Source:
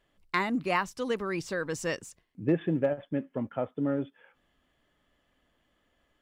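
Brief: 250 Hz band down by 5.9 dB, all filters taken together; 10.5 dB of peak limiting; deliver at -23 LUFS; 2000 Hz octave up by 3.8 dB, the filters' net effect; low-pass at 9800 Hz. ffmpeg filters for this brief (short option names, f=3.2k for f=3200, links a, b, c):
-af "lowpass=9.8k,equalizer=f=250:t=o:g=-8,equalizer=f=2k:t=o:g=4.5,volume=11.5dB,alimiter=limit=-10dB:level=0:latency=1"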